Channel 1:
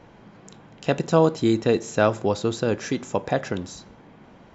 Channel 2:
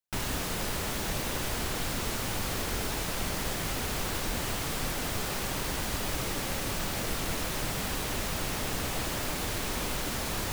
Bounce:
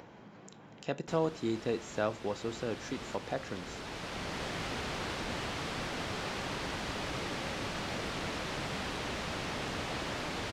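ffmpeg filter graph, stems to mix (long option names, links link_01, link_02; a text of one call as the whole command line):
ffmpeg -i stem1.wav -i stem2.wav -filter_complex "[0:a]volume=-12.5dB,asplit=2[link_01][link_02];[1:a]lowpass=4500,adelay=950,volume=-2dB[link_03];[link_02]apad=whole_len=505873[link_04];[link_03][link_04]sidechaincompress=threshold=-37dB:ratio=5:attack=9.4:release=1360[link_05];[link_01][link_05]amix=inputs=2:normalize=0,highpass=frequency=120:poles=1,acompressor=mode=upward:threshold=-43dB:ratio=2.5" out.wav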